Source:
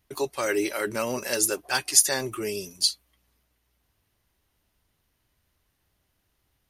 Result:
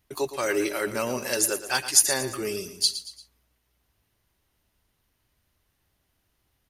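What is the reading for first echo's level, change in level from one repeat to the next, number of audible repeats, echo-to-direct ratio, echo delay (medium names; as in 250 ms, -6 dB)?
-12.5 dB, -7.0 dB, 3, -11.5 dB, 115 ms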